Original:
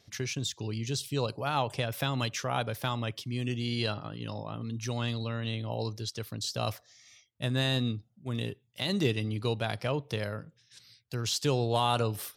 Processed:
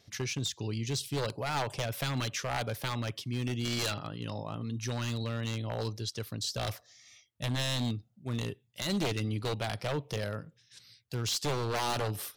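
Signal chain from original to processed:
0:03.65–0:04.07: parametric band 3,200 Hz +5 dB 2.3 octaves
wave folding −25 dBFS

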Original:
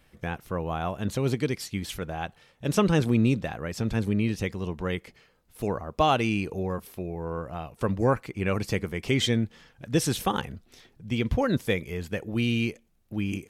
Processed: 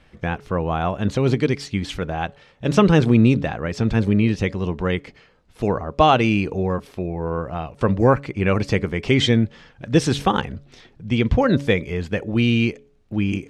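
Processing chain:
high-frequency loss of the air 94 metres
hum removal 141.2 Hz, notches 4
level +8 dB

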